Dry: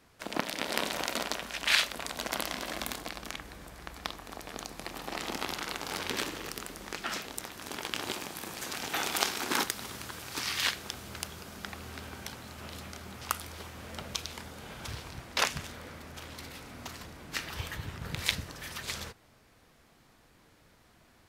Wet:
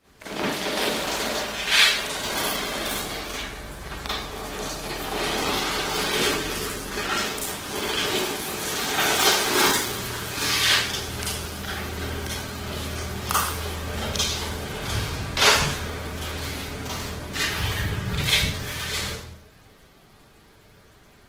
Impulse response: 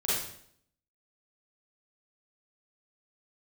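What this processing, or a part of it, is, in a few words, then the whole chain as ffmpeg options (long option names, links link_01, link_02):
speakerphone in a meeting room: -filter_complex "[1:a]atrim=start_sample=2205[link_01];[0:a][link_01]afir=irnorm=-1:irlink=0,dynaudnorm=framelen=460:gausssize=17:maxgain=11.5dB" -ar 48000 -c:a libopus -b:a 16k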